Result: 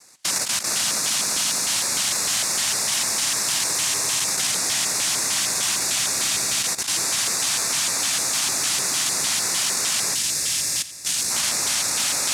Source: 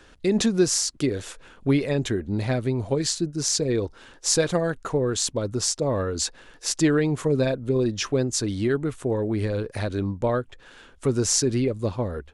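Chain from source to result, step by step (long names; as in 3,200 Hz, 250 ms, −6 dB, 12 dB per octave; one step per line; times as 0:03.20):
lower of the sound and its delayed copy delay 1 ms
cochlear-implant simulation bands 1
high-shelf EQ 4,500 Hz +11 dB
echo that builds up and dies away 86 ms, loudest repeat 5, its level −13.5 dB
on a send at −9 dB: convolution reverb RT60 0.65 s, pre-delay 99 ms
on the sum: output level in coarse steps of 14 dB
0:10.14–0:11.31: parametric band 980 Hz −9.5 dB 2 octaves
compressor whose output falls as the input rises −26 dBFS, ratio −1
auto-filter notch square 3.3 Hz 450–3,100 Hz
level +5.5 dB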